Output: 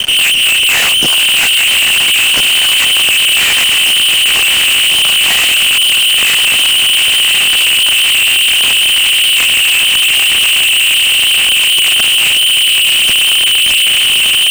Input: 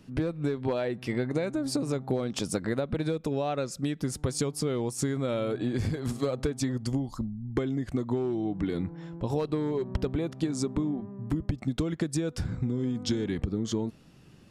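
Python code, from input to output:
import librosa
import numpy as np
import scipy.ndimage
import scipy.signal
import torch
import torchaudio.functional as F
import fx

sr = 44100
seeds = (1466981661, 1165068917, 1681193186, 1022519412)

p1 = fx.lower_of_two(x, sr, delay_ms=2.5)
p2 = fx.low_shelf(p1, sr, hz=120.0, db=12.0)
p3 = fx.whisperise(p2, sr, seeds[0])
p4 = p3 + fx.echo_diffused(p3, sr, ms=1089, feedback_pct=71, wet_db=-7.0, dry=0)
p5 = fx.freq_invert(p4, sr, carrier_hz=3100)
p6 = fx.fuzz(p5, sr, gain_db=49.0, gate_db=-56.0)
p7 = fx.band_squash(p6, sr, depth_pct=40)
y = p7 * librosa.db_to_amplitude(4.5)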